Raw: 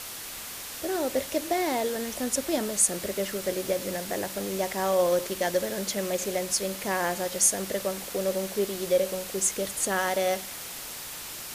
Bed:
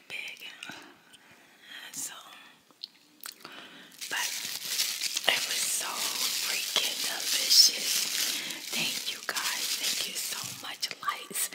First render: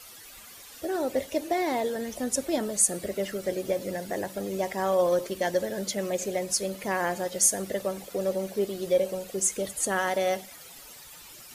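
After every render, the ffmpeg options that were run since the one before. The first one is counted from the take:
-af "afftdn=nr=13:nf=-39"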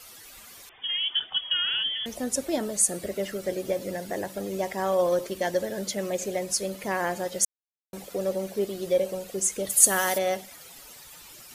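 -filter_complex "[0:a]asettb=1/sr,asplit=3[a][b][c];[a]atrim=end=0.694[d];[b]atrim=start=0.69:end=2.06,asetpts=PTS-STARTPTS,afade=t=in:d=0.004:c=qsin,afade=t=out:st=1.366:d=0.004:c=qsin,lowpass=f=3.1k:t=q:w=0.5098,lowpass=f=3.1k:t=q:w=0.6013,lowpass=f=3.1k:t=q:w=0.9,lowpass=f=3.1k:t=q:w=2.563,afreqshift=-3600[e];[c]atrim=start=2.056[f];[d][e]acrossfade=d=0.004:c1=hsin:c2=qsin[g];[g][f]acrossfade=d=0.004:c1=qsin:c2=hsin,asplit=3[h][i][j];[h]afade=t=out:st=9.69:d=0.02[k];[i]aemphasis=mode=production:type=75kf,afade=t=in:st=9.69:d=0.02,afade=t=out:st=10.17:d=0.02[l];[j]afade=t=in:st=10.17:d=0.02[m];[k][l][m]amix=inputs=3:normalize=0,asplit=3[n][o][p];[n]atrim=end=7.45,asetpts=PTS-STARTPTS,afade=t=out:st=7.446:d=0.004:c=hsin[q];[o]atrim=start=7.45:end=7.93,asetpts=PTS-STARTPTS,volume=0[r];[p]atrim=start=7.93,asetpts=PTS-STARTPTS,afade=t=in:d=0.004:c=hsin[s];[q][r][s]concat=n=3:v=0:a=1"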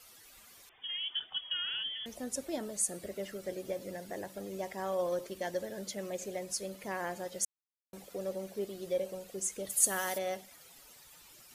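-af "volume=-9.5dB"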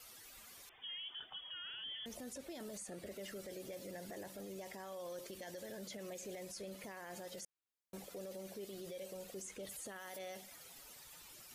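-filter_complex "[0:a]acrossover=split=1900|4300[a][b][c];[a]acompressor=threshold=-41dB:ratio=4[d];[b]acompressor=threshold=-47dB:ratio=4[e];[c]acompressor=threshold=-46dB:ratio=4[f];[d][e][f]amix=inputs=3:normalize=0,alimiter=level_in=15.5dB:limit=-24dB:level=0:latency=1:release=13,volume=-15.5dB"

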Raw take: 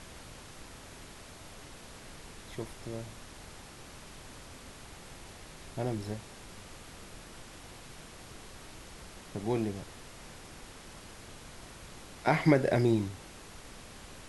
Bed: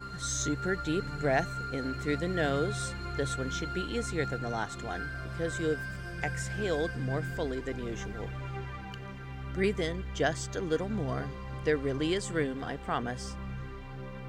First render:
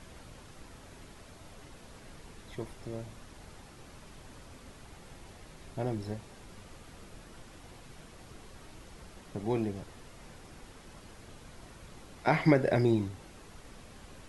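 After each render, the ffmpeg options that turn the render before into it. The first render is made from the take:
-af "afftdn=nr=6:nf=-50"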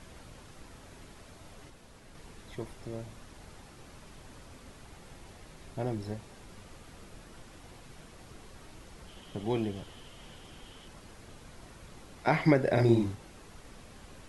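-filter_complex "[0:a]asettb=1/sr,asplit=3[a][b][c];[a]atrim=end=9.074[d];[b]atrim=start=9.07:end=10.88,asetpts=PTS-STARTPTS,afade=t=in:d=0.004:c=qsin,afade=t=out:st=1.806:d=0.004:c=qsin,equalizer=f=3.1k:w=5.8:g=13.5[e];[c]atrim=start=10.876[f];[d][e]acrossfade=d=0.004:c1=hsin:c2=qsin[g];[g][f]acrossfade=d=0.004:c1=qsin:c2=hsin,asettb=1/sr,asplit=3[h][i][j];[h]atrim=end=12.734[k];[i]atrim=start=12.73:end=13.15,asetpts=PTS-STARTPTS,afade=t=in:d=0.004:c=qsin,afade=t=out:st=0.416:d=0.004:c=qsin,asplit=2[l][m];[m]adelay=43,volume=-2dB[n];[l][n]amix=inputs=2:normalize=0,atrim=end_sample=18522[o];[j]atrim=start=13.146[p];[k][o]acrossfade=d=0.004:c1=hsin:c2=qsin[q];[q][p]acrossfade=d=0.004:c1=qsin:c2=hsin,asplit=3[r][s][t];[r]atrim=end=1.702[u];[s]atrim=start=1.698:end=2.152,asetpts=PTS-STARTPTS,volume=-3.5dB[v];[t]atrim=start=2.148[w];[u][v]acrossfade=d=0.004:c1=hsin:c2=hsin[x];[x][w]acrossfade=d=0.004:c1=hsin:c2=hsin"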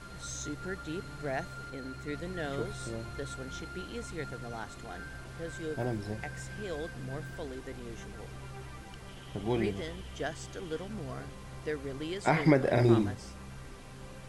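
-filter_complex "[1:a]volume=-7.5dB[a];[0:a][a]amix=inputs=2:normalize=0"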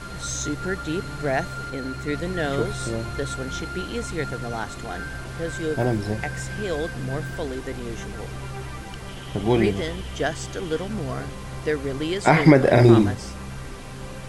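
-af "volume=11dB,alimiter=limit=-2dB:level=0:latency=1"

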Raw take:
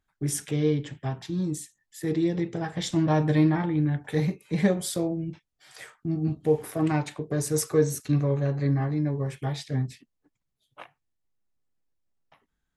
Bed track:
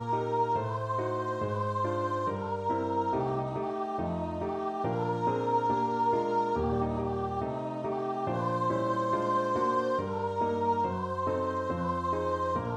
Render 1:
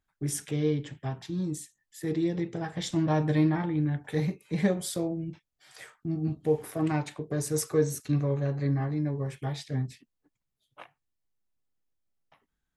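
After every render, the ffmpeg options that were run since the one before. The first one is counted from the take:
-af "volume=-3dB"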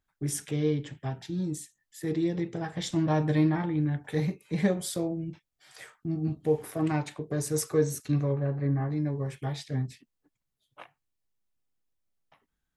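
-filter_complex "[0:a]asettb=1/sr,asplit=3[a][b][c];[a]atrim=end=1.104[d];[b]atrim=start=1.1:end=1.51,asetpts=PTS-STARTPTS,afade=t=in:d=0.004:c=qsin,afade=t=out:st=0.406:d=0.004:c=qsin,asuperstop=centerf=1100:order=4:qfactor=4.3[e];[c]atrim=start=1.506[f];[d][e]acrossfade=d=0.004:c1=hsin:c2=qsin[g];[g][f]acrossfade=d=0.004:c1=qsin:c2=hsin,asplit=3[h][i][j];[h]afade=t=out:st=8.32:d=0.02[k];[i]lowpass=1.9k,afade=t=in:st=8.32:d=0.02,afade=t=out:st=8.89:d=0.02[l];[j]afade=t=in:st=8.89:d=0.02[m];[k][l][m]amix=inputs=3:normalize=0"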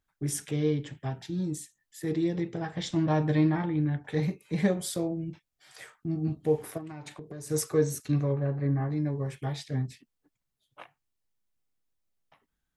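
-filter_complex "[0:a]asettb=1/sr,asplit=3[a][b][c];[a]atrim=end=2.524[d];[b]atrim=start=2.52:end=4.23,asetpts=PTS-STARTPTS,afade=t=in:d=0.004:c=qsin,afade=t=out:st=1.706:d=0.004:c=qsin,lowpass=6.4k[e];[c]atrim=start=4.226[f];[d][e]acrossfade=d=0.004:c1=hsin:c2=qsin[g];[g][f]acrossfade=d=0.004:c1=qsin:c2=hsin,asplit=3[h][i][j];[h]afade=t=out:st=6.77:d=0.02[k];[i]acompressor=threshold=-37dB:ratio=12:attack=3.2:release=140:knee=1:detection=peak,afade=t=in:st=6.77:d=0.02,afade=t=out:st=7.49:d=0.02[l];[j]afade=t=in:st=7.49:d=0.02[m];[k][l][m]amix=inputs=3:normalize=0"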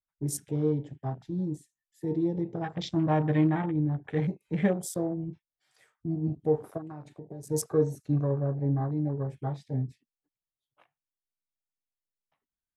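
-af "adynamicequalizer=threshold=0.00398:dfrequency=750:dqfactor=3.9:tfrequency=750:tqfactor=3.9:attack=5:release=100:ratio=0.375:range=1.5:mode=boostabove:tftype=bell,afwtdn=0.01"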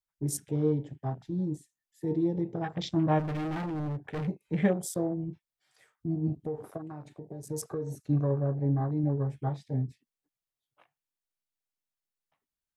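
-filter_complex "[0:a]asplit=3[a][b][c];[a]afade=t=out:st=3.18:d=0.02[d];[b]asoftclip=type=hard:threshold=-31dB,afade=t=in:st=3.18:d=0.02,afade=t=out:st=4.27:d=0.02[e];[c]afade=t=in:st=4.27:d=0.02[f];[d][e][f]amix=inputs=3:normalize=0,asettb=1/sr,asplit=3[g][h][i];[g]atrim=end=6.464[j];[h]atrim=start=6.46:end=7.92,asetpts=PTS-STARTPTS,afade=t=in:d=0.004:c=qsin,afade=t=out:st=1.456:d=0.004:c=qsin,acompressor=threshold=-30dB:ratio=6:attack=3.2:release=140:knee=1:detection=peak[k];[i]atrim=start=7.916[l];[j][k]acrossfade=d=0.004:c1=hsin:c2=qsin[m];[m][l]acrossfade=d=0.004:c1=qsin:c2=hsin,asettb=1/sr,asplit=3[n][o][p];[n]atrim=end=9.024[q];[o]atrim=start=9.02:end=9.49,asetpts=PTS-STARTPTS,afade=t=in:d=0.004:c=qsin,afade=t=out:st=0.466:d=0.004:c=qsin,asplit=2[r][s];[s]adelay=14,volume=-8.5dB[t];[r][t]amix=inputs=2:normalize=0,atrim=end_sample=20727[u];[p]atrim=start=9.486[v];[q][u]acrossfade=d=0.004:c1=hsin:c2=qsin[w];[w][v]acrossfade=d=0.004:c1=qsin:c2=hsin"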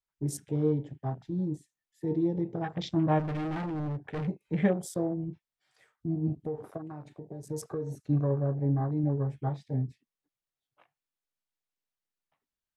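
-af "highshelf=f=7k:g=-8.5"

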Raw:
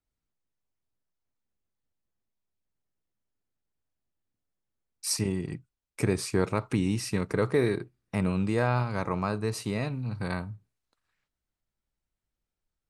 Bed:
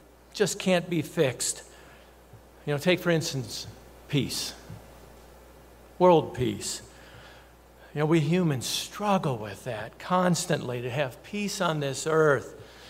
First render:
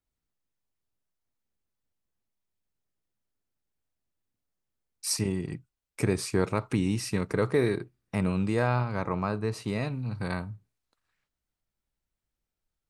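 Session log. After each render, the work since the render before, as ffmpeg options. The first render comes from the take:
-filter_complex "[0:a]asettb=1/sr,asplit=3[a][b][c];[a]atrim=end=8.764[d];[b]atrim=start=8.76:end=9.68,asetpts=PTS-STARTPTS,afade=t=in:d=0.004:c=qsin,afade=t=out:st=0.916:d=0.004:c=qsin,highshelf=f=5.3k:g=-10[e];[c]atrim=start=9.676[f];[d][e]acrossfade=d=0.004:c1=hsin:c2=qsin[g];[g][f]acrossfade=d=0.004:c1=qsin:c2=hsin"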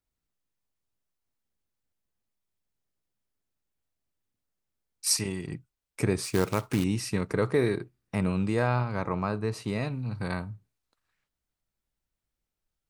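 -filter_complex "[0:a]asettb=1/sr,asplit=3[a][b][c];[a]atrim=end=5.064[d];[b]atrim=start=5.06:end=5.47,asetpts=PTS-STARTPTS,afade=t=in:d=0.004:c=qsin,afade=t=out:st=0.406:d=0.004:c=qsin,tiltshelf=f=900:g=-4.5[e];[c]atrim=start=5.466[f];[d][e]acrossfade=d=0.004:c1=hsin:c2=qsin[g];[g][f]acrossfade=d=0.004:c1=qsin:c2=hsin,asettb=1/sr,asplit=3[h][i][j];[h]atrim=end=6.244[k];[i]atrim=start=6.24:end=6.84,asetpts=PTS-STARTPTS,afade=t=in:d=0.004:c=qsin,afade=t=out:st=0.596:d=0.004:c=qsin,acrusher=bits=3:mode=log:mix=0:aa=0.000001[l];[j]atrim=start=6.836[m];[k][l]acrossfade=d=0.004:c1=hsin:c2=qsin[n];[n][m]acrossfade=d=0.004:c1=qsin:c2=hsin"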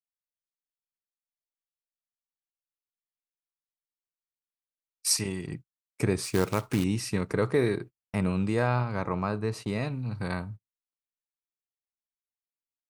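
-af "agate=range=-33dB:threshold=-40dB:ratio=16:detection=peak"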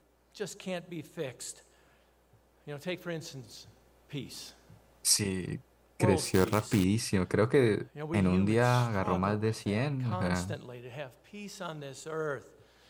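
-filter_complex "[1:a]volume=-13dB[a];[0:a][a]amix=inputs=2:normalize=0"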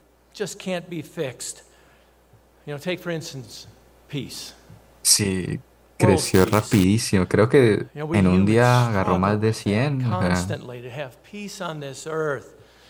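-af "volume=9.5dB,alimiter=limit=-2dB:level=0:latency=1"

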